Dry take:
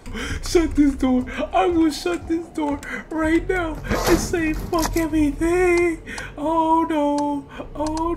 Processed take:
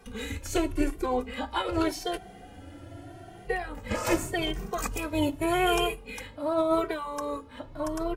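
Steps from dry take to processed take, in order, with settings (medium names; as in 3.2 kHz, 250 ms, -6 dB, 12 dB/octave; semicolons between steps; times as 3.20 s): formant shift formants +4 st; spectral freeze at 2.21 s, 1.26 s; endless flanger 2.1 ms +0.84 Hz; trim -6 dB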